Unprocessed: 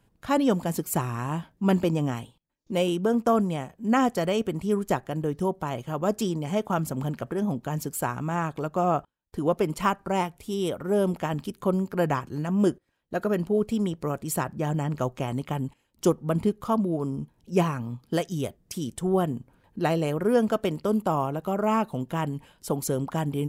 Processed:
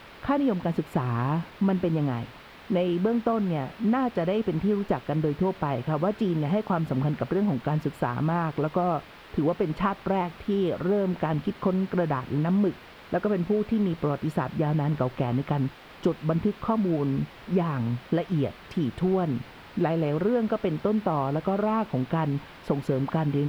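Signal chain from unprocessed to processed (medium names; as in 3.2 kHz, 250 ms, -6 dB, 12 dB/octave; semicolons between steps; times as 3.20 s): compression, threshold -28 dBFS, peak gain reduction 12 dB; added noise white -44 dBFS; distance through air 410 m; trim +7.5 dB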